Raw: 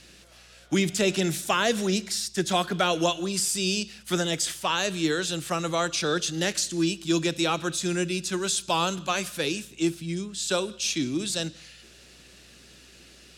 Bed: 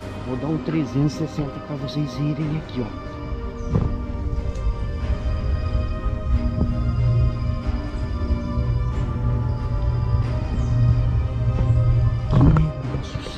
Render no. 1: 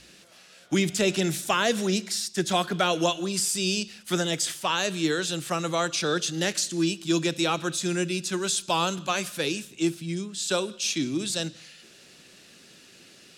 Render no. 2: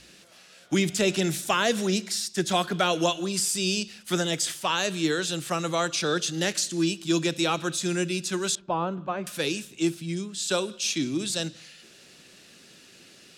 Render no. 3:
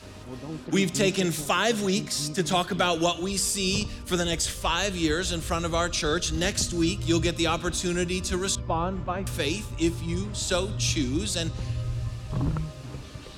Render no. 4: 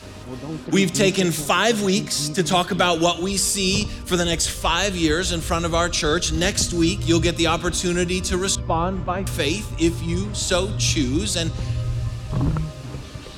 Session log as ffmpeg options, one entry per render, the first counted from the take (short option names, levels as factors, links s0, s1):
-af "bandreject=f=60:t=h:w=4,bandreject=f=120:t=h:w=4"
-filter_complex "[0:a]asettb=1/sr,asplit=3[s0][s1][s2];[s0]atrim=end=8.554[s3];[s1]atrim=start=8.55:end=9.27,asetpts=PTS-STARTPTS,afade=t=in:d=0.004:c=qsin,afade=t=out:st=0.716:d=0.004:c=qsin,lowpass=1100[s4];[s2]atrim=start=9.266[s5];[s3][s4]acrossfade=d=0.004:c1=hsin:c2=qsin[s6];[s6][s5]acrossfade=d=0.004:c1=qsin:c2=hsin"
-filter_complex "[1:a]volume=0.237[s0];[0:a][s0]amix=inputs=2:normalize=0"
-af "volume=1.88"